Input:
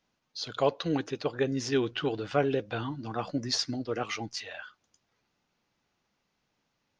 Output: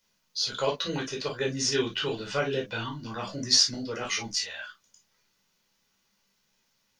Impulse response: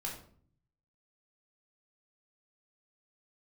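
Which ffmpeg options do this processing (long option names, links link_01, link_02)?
-filter_complex "[0:a]crystalizer=i=5:c=0[link_01];[1:a]atrim=start_sample=2205,atrim=end_sample=3528,asetrate=52920,aresample=44100[link_02];[link_01][link_02]afir=irnorm=-1:irlink=0"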